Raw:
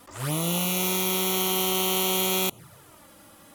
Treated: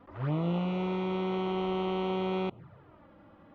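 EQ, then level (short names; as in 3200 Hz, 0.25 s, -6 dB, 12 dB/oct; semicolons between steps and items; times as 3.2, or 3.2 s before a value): air absorption 290 m; tape spacing loss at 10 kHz 34 dB; 0.0 dB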